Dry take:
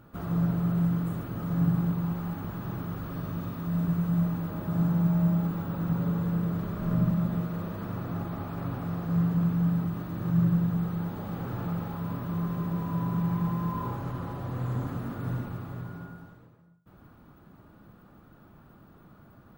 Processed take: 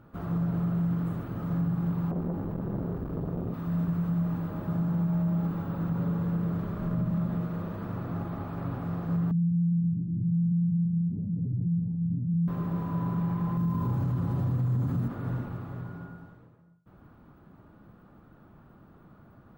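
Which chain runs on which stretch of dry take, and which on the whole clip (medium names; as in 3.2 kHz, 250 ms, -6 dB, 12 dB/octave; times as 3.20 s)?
2.11–3.54 s: tilt shelf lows +7 dB, about 790 Hz + doubling 45 ms -5.5 dB + transformer saturation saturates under 470 Hz
9.31–12.48 s: spectral contrast enhancement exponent 2.2 + inverse Chebyshev low-pass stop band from 1.6 kHz, stop band 60 dB + peaking EQ 150 Hz +5 dB 1.9 oct
13.57–15.08 s: high-pass 110 Hz + tone controls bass +15 dB, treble +9 dB
whole clip: treble shelf 3.5 kHz -10 dB; peak limiter -21.5 dBFS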